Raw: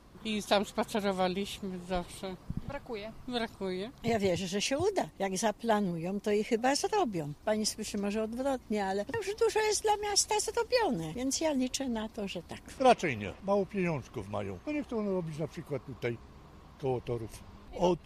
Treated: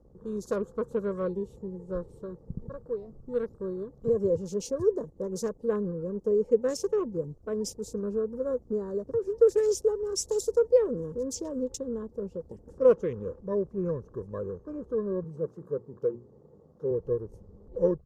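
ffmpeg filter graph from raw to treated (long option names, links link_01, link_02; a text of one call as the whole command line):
ffmpeg -i in.wav -filter_complex "[0:a]asettb=1/sr,asplit=3[link_01][link_02][link_03];[link_01]atrim=end=15.244[link_04];[link_02]atrim=start=15.24:end=16.91,asetpts=PTS-STARTPTS,afade=type=in:duration=0.004:curve=qsin,afade=type=out:start_time=1.666:duration=0.004:curve=qsin,highpass=130,bandreject=frequency=60:width_type=h:width=6,bandreject=frequency=120:width_type=h:width=6,bandreject=frequency=180:width_type=h:width=6,bandreject=frequency=240:width_type=h:width=6,bandreject=frequency=300:width_type=h:width=6,bandreject=frequency=360:width_type=h:width=6[link_05];[link_03]atrim=start=16.906[link_06];[link_04][link_05]acrossfade=duration=0.004:curve1=hsin:curve2=qsin[link_07];[link_07][link_06]acrossfade=duration=0.004:curve1=qsin:curve2=hsin,firequalizer=gain_entry='entry(190,0);entry(290,-4);entry(490,11);entry(740,-27);entry(1100,1);entry(2200,-22);entry(5100,-10);entry(7400,4)':delay=0.05:min_phase=1,afwtdn=0.00355,highshelf=frequency=7200:width_type=q:width=1.5:gain=-9" out.wav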